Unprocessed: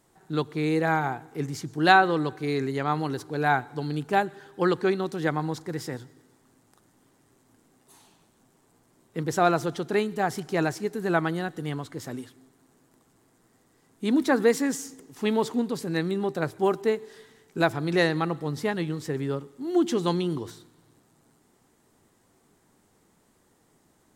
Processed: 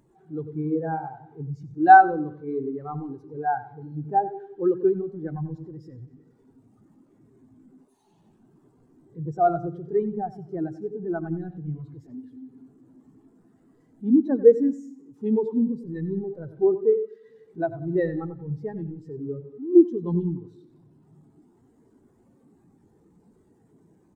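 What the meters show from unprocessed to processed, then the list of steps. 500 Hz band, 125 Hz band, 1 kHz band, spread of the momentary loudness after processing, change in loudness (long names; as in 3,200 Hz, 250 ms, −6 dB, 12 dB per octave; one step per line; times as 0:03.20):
+2.5 dB, −1.5 dB, +4.0 dB, 18 LU, +2.0 dB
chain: converter with a step at zero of −24.5 dBFS
repeating echo 93 ms, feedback 58%, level −7 dB
every bin expanded away from the loudest bin 2.5 to 1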